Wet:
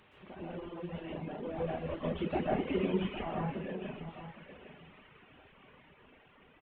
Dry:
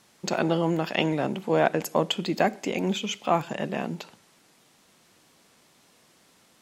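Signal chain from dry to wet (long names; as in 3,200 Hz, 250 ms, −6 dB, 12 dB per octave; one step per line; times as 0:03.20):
linear delta modulator 16 kbit/s, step −34 dBFS
source passing by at 0:02.65, 12 m/s, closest 7 metres
parametric band 75 Hz +9 dB 0.46 octaves
notch filter 690 Hz, Q 18
convolution reverb RT60 0.90 s, pre-delay 116 ms, DRR −5.5 dB
reverb reduction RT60 1.5 s
parametric band 1,500 Hz −3.5 dB 1.1 octaves
single-tap delay 807 ms −11.5 dB
level −7 dB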